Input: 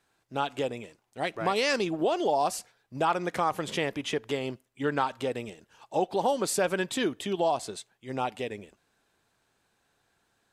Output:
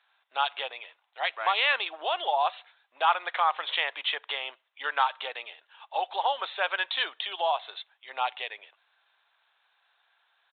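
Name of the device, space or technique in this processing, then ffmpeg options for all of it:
musical greeting card: -af "aresample=8000,aresample=44100,highpass=f=780:w=0.5412,highpass=f=780:w=1.3066,equalizer=f=3900:t=o:w=0.55:g=7,volume=1.68"

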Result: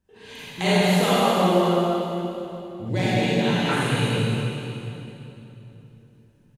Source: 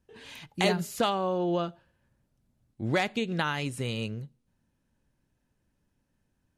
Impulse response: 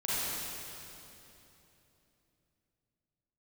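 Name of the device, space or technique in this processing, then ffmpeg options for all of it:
cave: -filter_complex "[0:a]aecho=1:1:207:0.376[s0];[1:a]atrim=start_sample=2205[s1];[s0][s1]afir=irnorm=-1:irlink=0,asettb=1/sr,asplit=3[s2][s3][s4];[s2]atrim=end=2.894[s5];[s3]atrim=start=2.89:end=3.69,asetpts=PTS-STARTPTS,afade=t=in:d=0.004:c=qsin,afade=t=out:st=0.796:d=0.004:c=qsin,equalizer=f=1300:t=o:w=0.78:g=-12.5[s6];[s4]atrim=start=3.686[s7];[s5][s6]acrossfade=d=0.004:c1=hsin:c2=qsin[s8];[s8][s7]acrossfade=d=0.004:c1=qsin:c2=hsin"

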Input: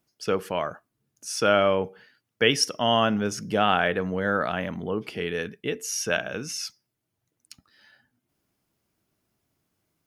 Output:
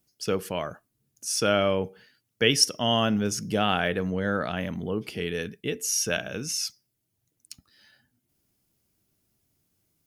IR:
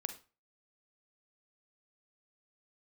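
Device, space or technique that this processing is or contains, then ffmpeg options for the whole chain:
smiley-face EQ: -filter_complex "[0:a]lowshelf=f=110:g=5.5,equalizer=f=1100:t=o:w=2.1:g=-5.5,highshelf=f=5300:g=7,asettb=1/sr,asplit=3[s0][s1][s2];[s0]atrim=end=4.114[s3];[s1]atrim=start=4.11:end=4.57,asetpts=PTS-STARTPTS,afade=t=in:d=0.004:c=qsin,afade=t=out:st=0.456:d=0.004:c=qsin,lowpass=8400[s4];[s2]atrim=start=4.566[s5];[s3][s4]acrossfade=d=0.004:c1=hsin:c2=qsin[s6];[s6][s5]acrossfade=d=0.004:c1=qsin:c2=hsin"

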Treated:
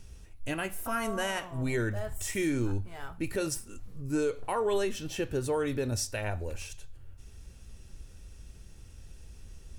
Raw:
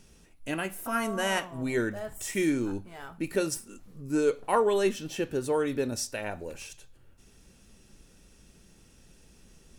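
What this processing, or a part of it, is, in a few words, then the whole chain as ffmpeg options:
car stereo with a boomy subwoofer: -af "lowshelf=f=130:t=q:w=1.5:g=10.5,alimiter=limit=0.0891:level=0:latency=1:release=87"

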